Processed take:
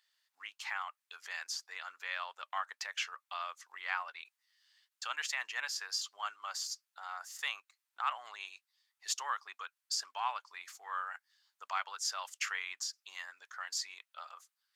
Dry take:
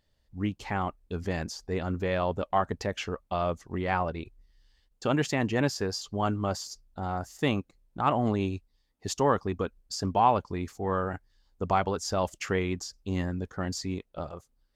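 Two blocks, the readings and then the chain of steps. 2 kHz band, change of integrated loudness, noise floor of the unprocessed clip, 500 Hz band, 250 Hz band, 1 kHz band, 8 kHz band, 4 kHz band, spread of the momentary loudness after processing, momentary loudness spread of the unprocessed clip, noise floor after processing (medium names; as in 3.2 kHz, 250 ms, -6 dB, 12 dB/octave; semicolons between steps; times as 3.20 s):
-2.0 dB, -9.0 dB, -72 dBFS, -27.5 dB, under -40 dB, -10.5 dB, 0.0 dB, -0.5 dB, 12 LU, 11 LU, under -85 dBFS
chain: in parallel at +2 dB: compression, threshold -35 dBFS, peak gain reduction 17.5 dB; on the sum: high-pass 1.2 kHz 24 dB/octave; trim -4.5 dB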